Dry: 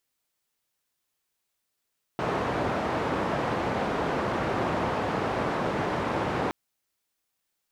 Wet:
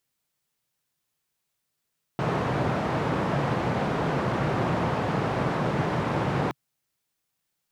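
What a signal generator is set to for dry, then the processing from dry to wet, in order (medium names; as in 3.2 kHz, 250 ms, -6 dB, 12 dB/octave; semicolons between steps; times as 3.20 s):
noise band 83–900 Hz, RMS -28 dBFS 4.32 s
peaking EQ 140 Hz +10 dB 0.79 oct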